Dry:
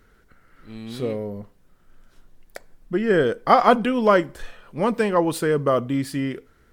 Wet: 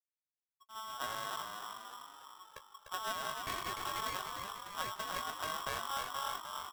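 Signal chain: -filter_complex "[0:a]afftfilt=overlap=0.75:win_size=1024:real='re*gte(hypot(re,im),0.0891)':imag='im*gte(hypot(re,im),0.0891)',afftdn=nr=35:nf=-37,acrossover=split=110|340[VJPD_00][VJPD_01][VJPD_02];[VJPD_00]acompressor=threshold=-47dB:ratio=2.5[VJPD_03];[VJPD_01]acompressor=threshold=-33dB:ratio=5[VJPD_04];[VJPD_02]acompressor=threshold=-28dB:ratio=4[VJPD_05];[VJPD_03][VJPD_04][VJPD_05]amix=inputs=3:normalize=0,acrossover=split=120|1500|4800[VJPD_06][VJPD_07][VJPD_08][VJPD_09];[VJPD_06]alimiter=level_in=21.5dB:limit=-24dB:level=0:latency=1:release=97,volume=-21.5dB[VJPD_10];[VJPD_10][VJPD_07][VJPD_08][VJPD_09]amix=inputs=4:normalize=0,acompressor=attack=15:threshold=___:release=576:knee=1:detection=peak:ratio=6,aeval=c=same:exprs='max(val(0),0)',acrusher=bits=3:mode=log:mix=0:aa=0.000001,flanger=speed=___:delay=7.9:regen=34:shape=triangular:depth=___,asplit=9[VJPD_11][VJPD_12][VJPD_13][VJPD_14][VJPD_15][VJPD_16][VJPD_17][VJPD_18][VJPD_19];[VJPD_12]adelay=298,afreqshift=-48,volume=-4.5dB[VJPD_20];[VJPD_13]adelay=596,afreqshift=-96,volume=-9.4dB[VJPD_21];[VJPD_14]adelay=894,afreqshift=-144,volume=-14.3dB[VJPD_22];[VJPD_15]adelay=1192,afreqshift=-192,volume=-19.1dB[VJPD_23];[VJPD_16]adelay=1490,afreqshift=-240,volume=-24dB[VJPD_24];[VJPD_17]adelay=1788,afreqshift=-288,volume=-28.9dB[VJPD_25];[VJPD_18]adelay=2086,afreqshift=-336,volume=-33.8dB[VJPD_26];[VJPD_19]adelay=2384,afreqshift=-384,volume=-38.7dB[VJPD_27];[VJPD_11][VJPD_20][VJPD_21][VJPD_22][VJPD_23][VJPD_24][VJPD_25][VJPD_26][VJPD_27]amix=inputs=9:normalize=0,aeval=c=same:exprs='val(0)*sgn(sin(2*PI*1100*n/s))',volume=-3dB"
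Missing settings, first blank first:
-28dB, 1.3, 7.3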